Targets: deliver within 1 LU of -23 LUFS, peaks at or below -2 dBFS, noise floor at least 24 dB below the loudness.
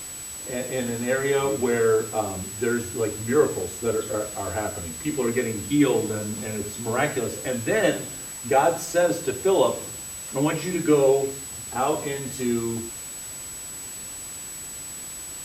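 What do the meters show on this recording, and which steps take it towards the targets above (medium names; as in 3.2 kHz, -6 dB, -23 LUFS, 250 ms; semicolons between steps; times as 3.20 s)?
steady tone 7.9 kHz; tone level -35 dBFS; noise floor -37 dBFS; noise floor target -50 dBFS; loudness -25.5 LUFS; peak level -7.5 dBFS; loudness target -23.0 LUFS
-> band-stop 7.9 kHz, Q 30; noise print and reduce 13 dB; trim +2.5 dB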